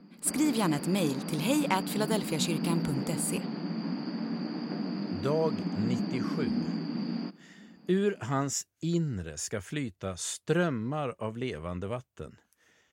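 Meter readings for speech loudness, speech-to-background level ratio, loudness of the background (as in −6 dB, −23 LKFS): −31.5 LKFS, 3.0 dB, −34.5 LKFS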